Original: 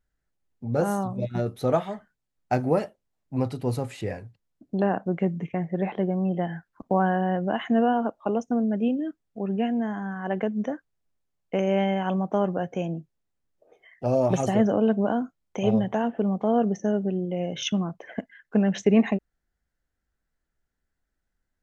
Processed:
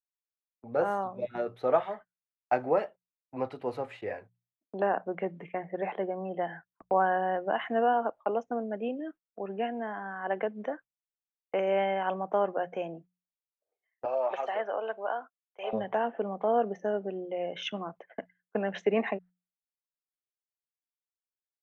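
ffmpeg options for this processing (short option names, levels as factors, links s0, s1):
-filter_complex "[0:a]asettb=1/sr,asplit=3[s0][s1][s2];[s0]atrim=end=14.054[s3];[s1]atrim=start=14.05:end=15.73,asetpts=PTS-STARTPTS,afade=t=in:d=0.004:c=qsin,afade=t=out:st=1.676:d=0.004:c=qsin,highpass=710,lowpass=4000[s4];[s2]atrim=start=15.726[s5];[s3][s4]acrossfade=d=0.004:c1=hsin:c2=qsin[s6];[s6][s5]acrossfade=d=0.004:c1=qsin:c2=hsin,agate=range=0.0398:threshold=0.01:ratio=16:detection=peak,acrossover=split=390 3100:gain=0.126 1 0.0708[s7][s8][s9];[s7][s8][s9]amix=inputs=3:normalize=0,bandreject=f=60:t=h:w=6,bandreject=f=120:t=h:w=6,bandreject=f=180:t=h:w=6"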